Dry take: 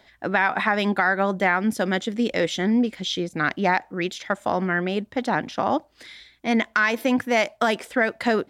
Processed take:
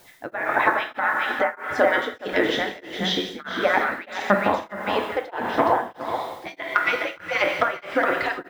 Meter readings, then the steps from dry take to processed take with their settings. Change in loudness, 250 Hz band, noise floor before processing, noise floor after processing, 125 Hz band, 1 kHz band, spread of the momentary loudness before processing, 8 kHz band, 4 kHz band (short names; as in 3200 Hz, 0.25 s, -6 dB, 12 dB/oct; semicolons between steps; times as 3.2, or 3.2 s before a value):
0.0 dB, -7.0 dB, -58 dBFS, -50 dBFS, -7.0 dB, +1.5 dB, 6 LU, -5.5 dB, +1.0 dB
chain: median-filter separation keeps percussive; high shelf 5100 Hz -12 dB; non-linear reverb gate 0.43 s falling, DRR 1.5 dB; treble ducked by the level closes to 1500 Hz, closed at -19.5 dBFS; added noise white -61 dBFS; on a send: echo 0.417 s -5.5 dB; on the sum: beating tremolo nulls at 1.6 Hz; gain +6 dB